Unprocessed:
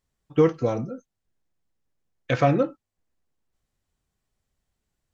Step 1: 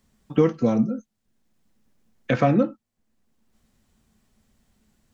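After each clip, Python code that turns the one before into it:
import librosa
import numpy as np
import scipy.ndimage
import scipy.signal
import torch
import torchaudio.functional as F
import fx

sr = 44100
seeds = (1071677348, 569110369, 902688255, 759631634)

y = fx.peak_eq(x, sr, hz=220.0, db=14.5, octaves=0.36)
y = fx.band_squash(y, sr, depth_pct=40)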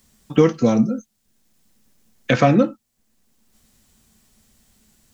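y = fx.high_shelf(x, sr, hz=3400.0, db=11.5)
y = y * librosa.db_to_amplitude(4.0)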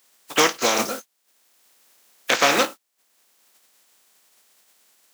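y = fx.spec_flatten(x, sr, power=0.43)
y = scipy.signal.sosfilt(scipy.signal.butter(2, 430.0, 'highpass', fs=sr, output='sos'), y)
y = y * librosa.db_to_amplitude(-1.5)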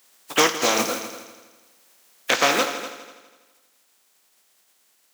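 y = fx.rider(x, sr, range_db=10, speed_s=0.5)
y = fx.echo_heads(y, sr, ms=82, heads='all three', feedback_pct=40, wet_db=-15.5)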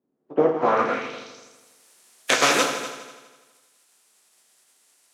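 y = fx.filter_sweep_lowpass(x, sr, from_hz=270.0, to_hz=10000.0, start_s=0.14, end_s=1.61, q=1.8)
y = fx.room_shoebox(y, sr, seeds[0], volume_m3=48.0, walls='mixed', distance_m=0.4)
y = y * librosa.db_to_amplitude(-1.0)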